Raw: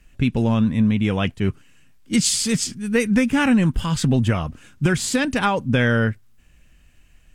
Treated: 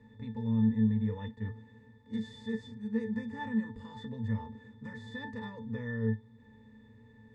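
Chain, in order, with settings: spectral levelling over time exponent 0.4; pitch-class resonator A, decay 0.2 s; spectral noise reduction 7 dB; trim -9 dB

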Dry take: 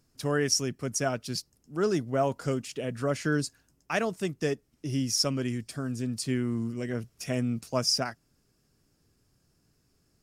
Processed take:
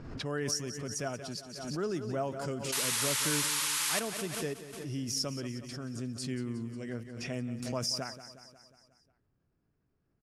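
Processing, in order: level-controlled noise filter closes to 1.8 kHz, open at -27.5 dBFS; painted sound noise, 2.72–4.00 s, 830–12000 Hz -24 dBFS; feedback delay 180 ms, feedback 58%, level -13 dB; swell ahead of each attack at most 45 dB/s; trim -8 dB

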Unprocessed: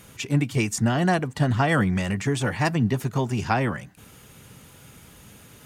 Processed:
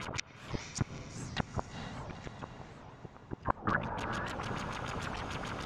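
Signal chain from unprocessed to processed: cycle switcher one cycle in 3, muted; LFO low-pass sine 6.8 Hz 590–5800 Hz; compression 4:1, threshold -35 dBFS, peak gain reduction 17 dB; treble shelf 3.7 kHz -3 dB; band-stop 1.8 kHz, Q 19; inverted gate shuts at -27 dBFS, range -41 dB; peaking EQ 1.1 kHz +8.5 dB 1.3 oct; echo that smears into a reverb 451 ms, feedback 47%, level -6 dB; on a send at -12.5 dB: reverberation RT60 5.4 s, pre-delay 77 ms; on the sum: warped record 78 rpm, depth 250 cents; trim +7.5 dB

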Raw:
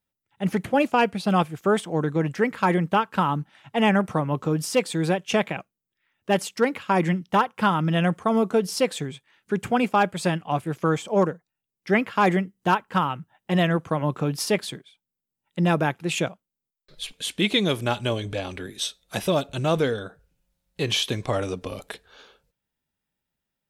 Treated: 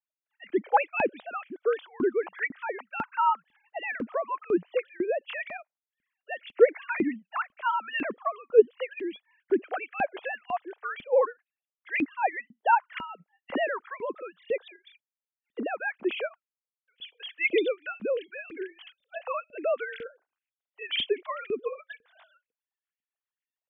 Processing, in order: formants replaced by sine waves; LFO high-pass saw up 2 Hz 230–2500 Hz; rotary cabinet horn 0.85 Hz, later 7.5 Hz, at 19.03 s; trim -5 dB

